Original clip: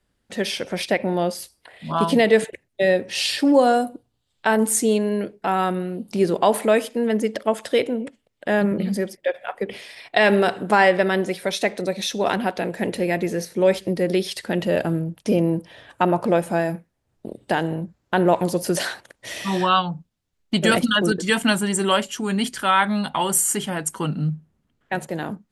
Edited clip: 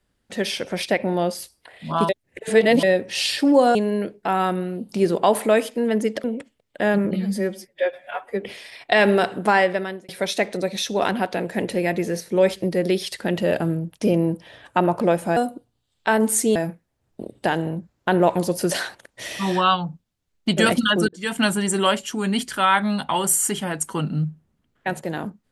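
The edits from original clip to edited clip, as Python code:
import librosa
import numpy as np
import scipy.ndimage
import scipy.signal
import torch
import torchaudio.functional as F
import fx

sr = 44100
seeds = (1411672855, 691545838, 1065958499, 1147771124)

y = fx.edit(x, sr, fx.reverse_span(start_s=2.09, length_s=0.74),
    fx.move(start_s=3.75, length_s=1.19, to_s=16.61),
    fx.cut(start_s=7.43, length_s=0.48),
    fx.stretch_span(start_s=8.82, length_s=0.85, factor=1.5),
    fx.fade_out_span(start_s=10.49, length_s=0.84, curve='qsin'),
    fx.fade_in_span(start_s=21.14, length_s=0.39), tone=tone)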